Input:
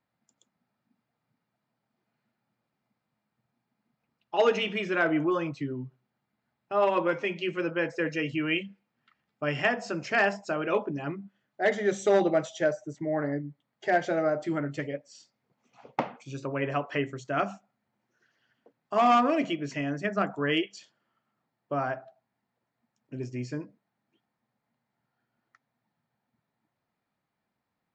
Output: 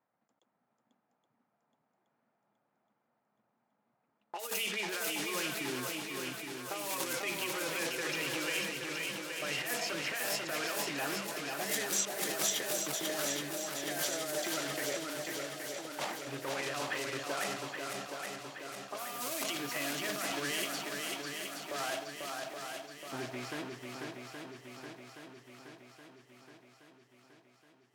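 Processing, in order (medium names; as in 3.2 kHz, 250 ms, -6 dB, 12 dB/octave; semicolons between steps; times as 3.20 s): block-companded coder 3-bit; level-controlled noise filter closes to 970 Hz, open at -20.5 dBFS; bass shelf 330 Hz -3.5 dB; compressor with a negative ratio -35 dBFS, ratio -1; peak limiter -28.5 dBFS, peak gain reduction 9.5 dB; RIAA curve recording; shuffle delay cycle 822 ms, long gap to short 1.5:1, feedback 58%, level -4 dB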